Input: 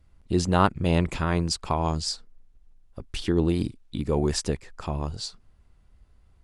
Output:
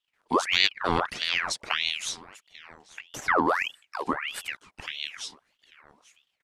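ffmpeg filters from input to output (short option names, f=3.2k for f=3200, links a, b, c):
-filter_complex "[0:a]asettb=1/sr,asplit=3[a][b][c];[a]atrim=end=0.704[d];[b]atrim=start=0.7:end=1.46,asetpts=PTS-STARTPTS,afade=t=in:d=0.004:c=qsin,afade=t=out:st=0.756:d=0.004:c=qsin,lowpass=f=8.8k:w=0.5412,lowpass=f=8.8k:w=1.3066[e];[c]atrim=start=1.456[f];[d][e]acrossfade=d=0.004:c1=hsin:c2=qsin[g];[g][f]acrossfade=d=0.004:c1=qsin:c2=hsin,agate=range=-12dB:threshold=-55dB:ratio=16:detection=peak,highpass=180,equalizer=f=360:w=1.8:g=5.5,asettb=1/sr,asplit=3[h][i][j];[h]atrim=end=4.124[k];[i]atrim=start=4.12:end=4.98,asetpts=PTS-STARTPTS,afade=t=in:d=0.004:c=qsin,afade=t=out:st=0.856:d=0.004:c=qsin,acompressor=threshold=-28dB:ratio=6[l];[j]atrim=start=4.976[m];[k][l]acrossfade=d=0.004:c1=hsin:c2=qsin[n];[n][m]acrossfade=d=0.004:c1=qsin:c2=hsin,aecho=1:1:842|1684:0.0891|0.0294,aeval=exprs='val(0)*sin(2*PI*1900*n/s+1900*0.7/1.6*sin(2*PI*1.6*n/s))':c=same"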